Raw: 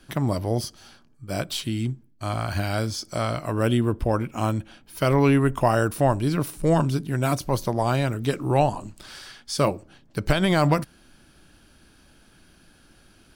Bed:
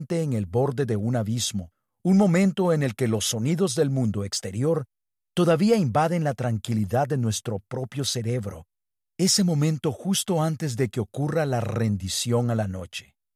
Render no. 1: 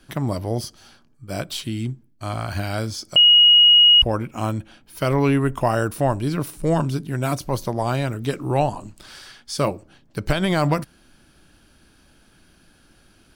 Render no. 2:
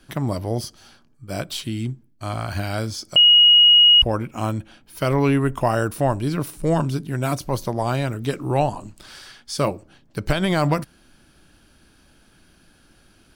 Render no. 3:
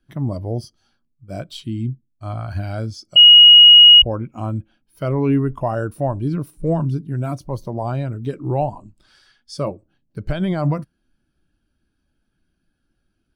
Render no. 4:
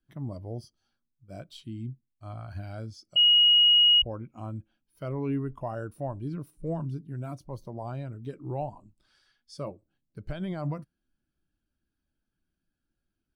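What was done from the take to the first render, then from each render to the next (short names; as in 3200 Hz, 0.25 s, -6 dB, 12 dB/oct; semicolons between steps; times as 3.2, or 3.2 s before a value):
3.16–4.02 bleep 2890 Hz -8.5 dBFS
nothing audible
in parallel at +3 dB: limiter -17 dBFS, peak gain reduction 10.5 dB; on the sum: spectral expander 1.5:1
gain -12.5 dB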